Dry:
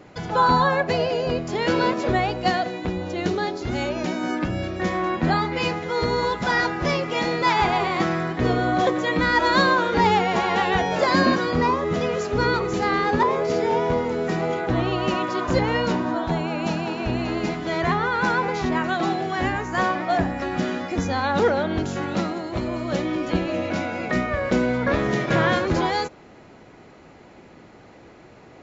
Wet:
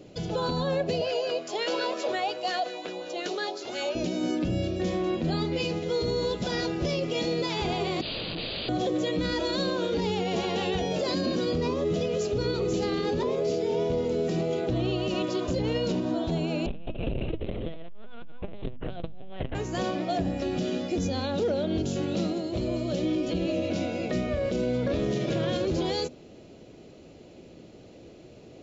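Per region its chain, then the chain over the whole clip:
0:01.01–0:03.95: high-pass filter 590 Hz + auto-filter bell 5.6 Hz 790–1,700 Hz +11 dB
0:08.01–0:08.69: wrap-around overflow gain 24.5 dB + linear-phase brick-wall low-pass 4,900 Hz
0:16.66–0:19.55: high-frequency loss of the air 71 metres + linear-prediction vocoder at 8 kHz pitch kept + saturating transformer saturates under 190 Hz
whole clip: flat-topped bell 1,300 Hz −13.5 dB; mains-hum notches 50/100/150/200/250 Hz; brickwall limiter −19.5 dBFS

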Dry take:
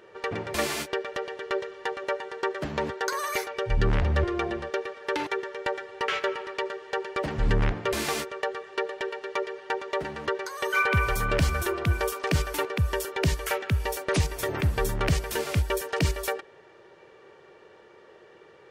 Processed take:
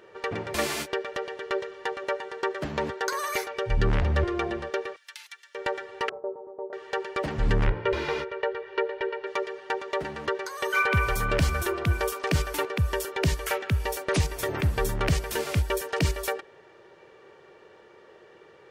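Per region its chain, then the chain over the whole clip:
0:04.96–0:05.55: high-pass filter 1,500 Hz + first difference
0:06.09–0:06.73: Butterworth low-pass 780 Hz + spectral tilt +3 dB per octave
0:07.67–0:09.27: high-frequency loss of the air 260 metres + comb filter 2.1 ms, depth 70% + one half of a high-frequency compander encoder only
whole clip: no processing

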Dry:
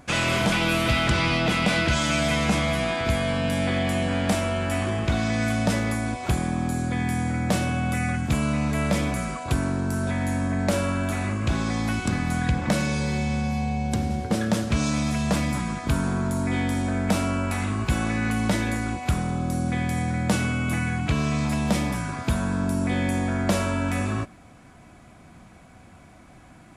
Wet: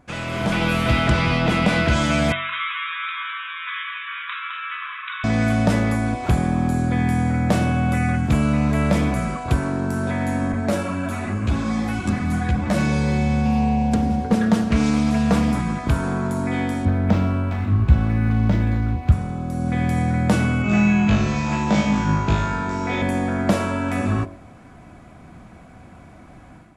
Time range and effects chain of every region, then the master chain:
0:02.32–0:05.24: linear-phase brick-wall band-pass 1,000–3,900 Hz + single-tap delay 210 ms −5.5 dB
0:10.52–0:12.78: high-shelf EQ 8,900 Hz +5 dB + string-ensemble chorus
0:13.45–0:15.56: comb filter 4.3 ms, depth 51% + highs frequency-modulated by the lows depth 0.19 ms
0:16.85–0:19.12: parametric band 76 Hz +14.5 dB 2 octaves + linearly interpolated sample-rate reduction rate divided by 4×
0:20.62–0:23.02: elliptic low-pass filter 7,100 Hz, stop band 60 dB + hum removal 49.49 Hz, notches 28 + flutter between parallel walls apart 3.3 metres, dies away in 0.75 s
whole clip: high-shelf EQ 2,400 Hz −9.5 dB; hum removal 46.9 Hz, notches 24; automatic gain control gain up to 10 dB; level −3.5 dB

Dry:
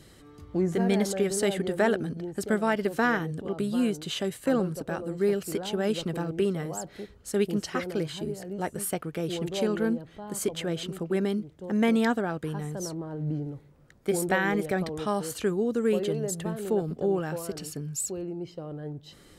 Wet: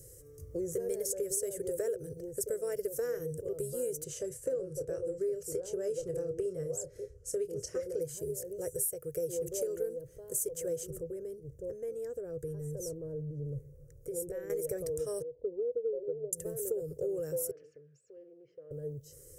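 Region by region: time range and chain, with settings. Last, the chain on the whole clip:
0:04.04–0:08.01: high-frequency loss of the air 67 metres + double-tracking delay 27 ms −10.5 dB
0:10.90–0:14.50: spectral tilt −2 dB per octave + downward compressor, threshold −31 dBFS
0:15.22–0:16.33: linear-phase brick-wall low-pass 1,000 Hz + parametric band 100 Hz −10 dB 2.1 octaves + expander for the loud parts, over −36 dBFS
0:17.51–0:18.71: downward compressor 4 to 1, threshold −40 dBFS + loudspeaker in its box 340–2,800 Hz, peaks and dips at 370 Hz −4 dB, 550 Hz −6 dB, 820 Hz −7 dB, 1,700 Hz +4 dB, 2,500 Hz +3 dB + highs frequency-modulated by the lows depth 0.14 ms
whole clip: drawn EQ curve 140 Hz 0 dB, 210 Hz −29 dB, 500 Hz +7 dB, 780 Hz −26 dB, 1,700 Hz −17 dB, 2,500 Hz −20 dB, 3,800 Hz −25 dB, 5,800 Hz +3 dB, 14,000 Hz +13 dB; downward compressor 5 to 1, threshold −31 dBFS

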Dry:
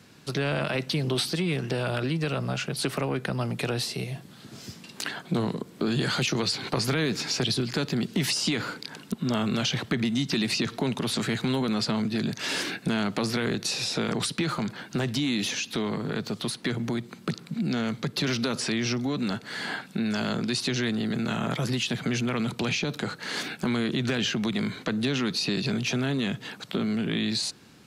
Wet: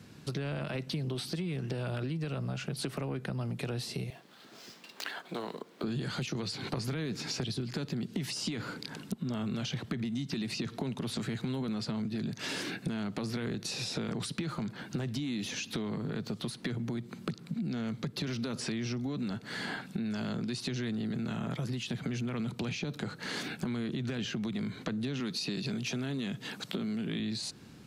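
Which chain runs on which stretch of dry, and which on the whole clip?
0:04.10–0:05.84: running median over 5 samples + high-pass filter 540 Hz
0:25.20–0:27.20: high-pass filter 130 Hz + parametric band 12,000 Hz +5 dB 2.9 octaves
whole clip: low-shelf EQ 320 Hz +8.5 dB; downward compressor 4 to 1, threshold −30 dBFS; level −3.5 dB

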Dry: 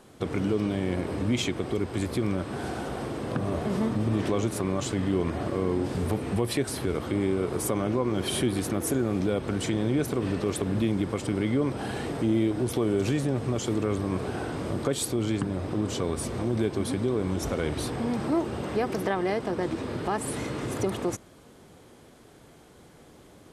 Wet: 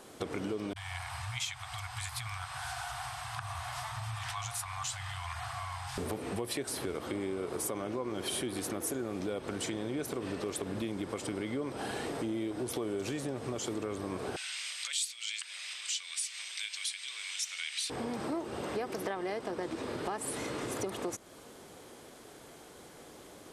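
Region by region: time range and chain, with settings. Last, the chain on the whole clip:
0:00.73–0:05.98: Chebyshev band-stop filter 130–720 Hz, order 5 + three-band delay without the direct sound lows, highs, mids 30/170 ms, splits 190/690 Hz
0:14.36–0:17.90: four-pole ladder high-pass 1,500 Hz, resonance 25% + flat-topped bell 4,400 Hz +12.5 dB 2.4 octaves
whole clip: bass and treble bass −9 dB, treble +3 dB; downward compressor 3 to 1, threshold −38 dBFS; level +2.5 dB

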